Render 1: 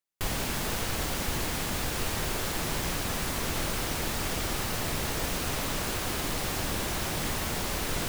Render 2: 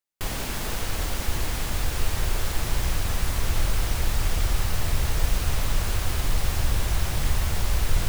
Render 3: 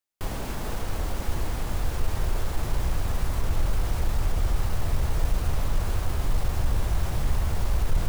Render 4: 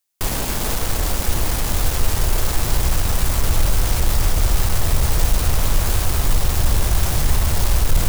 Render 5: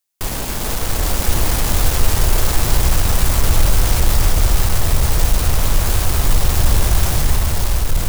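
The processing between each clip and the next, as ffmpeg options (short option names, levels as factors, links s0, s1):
-af "asubboost=boost=7:cutoff=91"
-filter_complex "[0:a]acrossover=split=860|1200[s0][s1][s2];[s2]alimiter=level_in=3.16:limit=0.0631:level=0:latency=1,volume=0.316[s3];[s0][s1][s3]amix=inputs=3:normalize=0,asoftclip=type=tanh:threshold=0.299"
-filter_complex "[0:a]asplit=2[s0][s1];[s1]acrusher=bits=4:mix=0:aa=0.000001,volume=0.355[s2];[s0][s2]amix=inputs=2:normalize=0,highshelf=f=3400:g=10,volume=1.68"
-af "dynaudnorm=f=270:g=7:m=3.76,volume=0.891"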